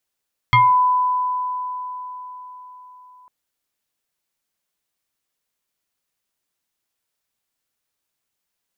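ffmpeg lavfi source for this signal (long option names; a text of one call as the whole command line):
ffmpeg -f lavfi -i "aevalsrc='0.355*pow(10,-3*t/4.47)*sin(2*PI*1000*t+1.7*pow(10,-3*t/0.3)*sin(2*PI*1.12*1000*t))':duration=2.75:sample_rate=44100" out.wav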